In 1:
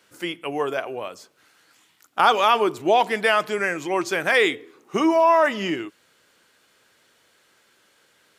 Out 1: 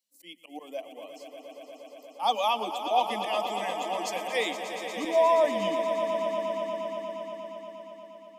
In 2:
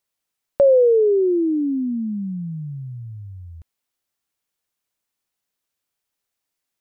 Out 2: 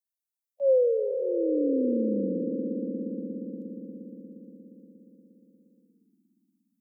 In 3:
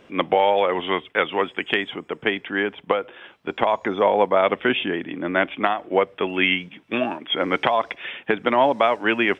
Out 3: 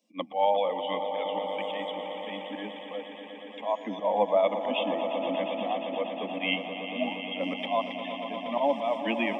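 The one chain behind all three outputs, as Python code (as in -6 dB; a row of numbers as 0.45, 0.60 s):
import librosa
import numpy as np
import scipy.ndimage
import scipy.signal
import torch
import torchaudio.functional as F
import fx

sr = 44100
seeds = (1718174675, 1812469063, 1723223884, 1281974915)

y = fx.bin_expand(x, sr, power=1.5)
y = scipy.signal.sosfilt(scipy.signal.butter(12, 190.0, 'highpass', fs=sr, output='sos'), y)
y = fx.auto_swell(y, sr, attack_ms=109.0)
y = fx.fixed_phaser(y, sr, hz=390.0, stages=6)
y = fx.echo_swell(y, sr, ms=118, loudest=5, wet_db=-11.5)
y = y * 10.0 ** (-30 / 20.0) / np.sqrt(np.mean(np.square(y)))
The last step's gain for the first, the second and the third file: -2.0, -3.0, -1.5 dB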